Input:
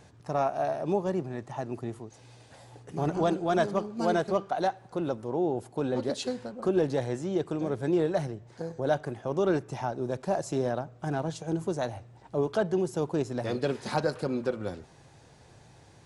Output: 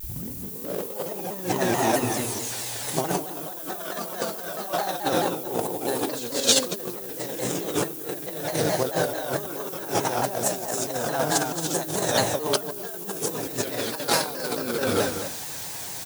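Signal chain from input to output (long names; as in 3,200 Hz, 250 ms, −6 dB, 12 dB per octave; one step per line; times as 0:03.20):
turntable start at the beginning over 0.85 s
reverb whose tail is shaped and stops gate 380 ms rising, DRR −3.5 dB
in parallel at −9 dB: slack as between gear wheels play −26.5 dBFS
on the sum: high-shelf EQ 9,300 Hz +11.5 dB
on a send: single-tap delay 225 ms −10 dB
on the sum: compressor whose output falls as the input rises −28 dBFS, ratio −0.5
background noise violet −53 dBFS
spectral tilt +3 dB per octave
hum removal 72.41 Hz, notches 6
floating-point word with a short mantissa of 2 bits
pitch modulation by a square or saw wave saw down 4.6 Hz, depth 160 cents
level +4.5 dB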